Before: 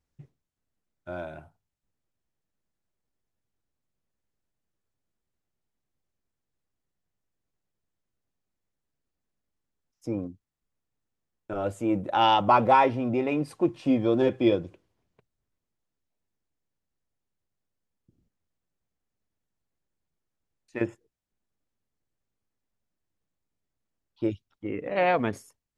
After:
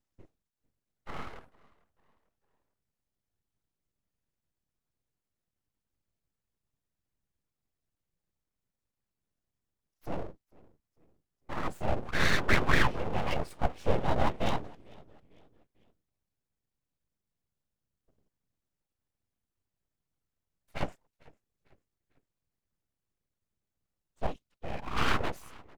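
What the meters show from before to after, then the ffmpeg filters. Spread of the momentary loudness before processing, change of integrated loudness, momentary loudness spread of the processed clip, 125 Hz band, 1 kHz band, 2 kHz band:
18 LU, -7.0 dB, 19 LU, 0.0 dB, -9.5 dB, +2.5 dB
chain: -filter_complex "[0:a]afftfilt=real='hypot(re,im)*cos(2*PI*random(0))':imag='hypot(re,im)*sin(2*PI*random(1))':win_size=512:overlap=0.75,asplit=4[a][b][c][d];[b]adelay=448,afreqshift=-52,volume=-24dB[e];[c]adelay=896,afreqshift=-104,volume=-31.5dB[f];[d]adelay=1344,afreqshift=-156,volume=-39.1dB[g];[a][e][f][g]amix=inputs=4:normalize=0,aeval=exprs='abs(val(0))':c=same,volume=4dB"

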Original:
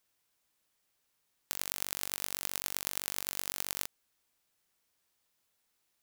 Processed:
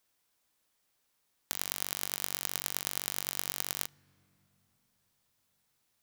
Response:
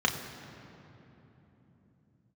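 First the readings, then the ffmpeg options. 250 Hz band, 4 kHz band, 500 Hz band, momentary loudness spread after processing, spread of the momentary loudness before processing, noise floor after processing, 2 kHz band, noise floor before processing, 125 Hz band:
+2.0 dB, +1.5 dB, +2.0 dB, 3 LU, 3 LU, -77 dBFS, +1.0 dB, -78 dBFS, +2.0 dB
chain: -filter_complex "[0:a]asplit=2[a][b];[b]equalizer=f=410:w=1.7:g=-6.5[c];[1:a]atrim=start_sample=2205,lowshelf=f=150:g=9[d];[c][d]afir=irnorm=-1:irlink=0,volume=-29dB[e];[a][e]amix=inputs=2:normalize=0,volume=1.5dB"

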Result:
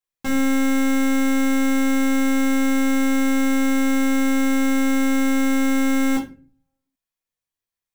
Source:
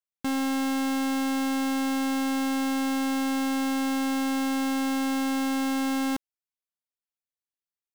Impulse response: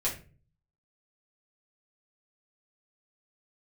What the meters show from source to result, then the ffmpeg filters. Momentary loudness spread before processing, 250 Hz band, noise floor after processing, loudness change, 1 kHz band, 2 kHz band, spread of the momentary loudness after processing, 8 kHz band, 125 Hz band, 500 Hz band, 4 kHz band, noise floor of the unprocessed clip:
0 LU, +7.0 dB, under -85 dBFS, +7.0 dB, +1.0 dB, +8.5 dB, 1 LU, +6.5 dB, n/a, +8.0 dB, +2.0 dB, under -85 dBFS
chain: -filter_complex "[1:a]atrim=start_sample=2205[a];[0:a][a]afir=irnorm=-1:irlink=0"

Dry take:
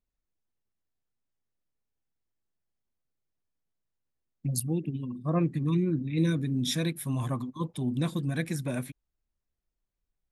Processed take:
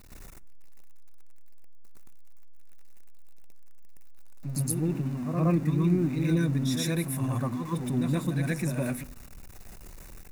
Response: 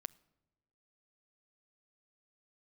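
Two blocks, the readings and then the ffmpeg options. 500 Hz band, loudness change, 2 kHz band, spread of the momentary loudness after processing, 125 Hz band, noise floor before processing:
+2.0 dB, +2.0 dB, +2.0 dB, 7 LU, +2.5 dB, -85 dBFS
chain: -filter_complex "[0:a]aeval=exprs='val(0)+0.5*0.0119*sgn(val(0))':c=same,bandreject=f=3.2k:w=5,asplit=2[a][b];[b]equalizer=f=4.4k:w=3:g=-8[c];[1:a]atrim=start_sample=2205,asetrate=57330,aresample=44100,adelay=118[d];[c][d]afir=irnorm=-1:irlink=0,volume=12.5dB[e];[a][e]amix=inputs=2:normalize=0,volume=-6dB"

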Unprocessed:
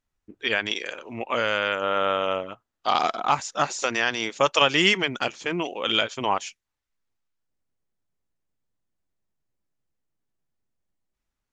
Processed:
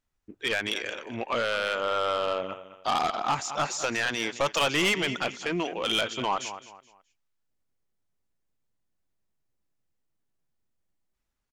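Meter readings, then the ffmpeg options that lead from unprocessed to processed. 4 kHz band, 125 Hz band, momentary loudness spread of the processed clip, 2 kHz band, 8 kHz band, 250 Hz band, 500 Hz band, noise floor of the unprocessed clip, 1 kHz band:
-4.0 dB, -2.0 dB, 9 LU, -4.0 dB, 0.0 dB, -2.5 dB, -3.5 dB, -84 dBFS, -4.0 dB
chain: -af "aecho=1:1:212|424|636:0.158|0.0475|0.0143,asoftclip=type=tanh:threshold=-19.5dB"

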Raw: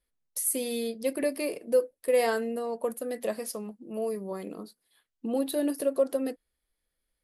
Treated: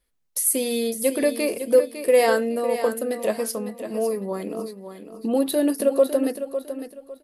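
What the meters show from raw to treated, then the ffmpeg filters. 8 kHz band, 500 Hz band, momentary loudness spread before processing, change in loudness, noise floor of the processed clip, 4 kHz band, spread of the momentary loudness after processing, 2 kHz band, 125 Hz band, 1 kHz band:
+7.5 dB, +7.5 dB, 12 LU, +7.0 dB, -64 dBFS, +7.5 dB, 13 LU, +7.5 dB, n/a, +7.5 dB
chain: -af "aecho=1:1:554|1108|1662:0.316|0.0854|0.0231,volume=7dB"

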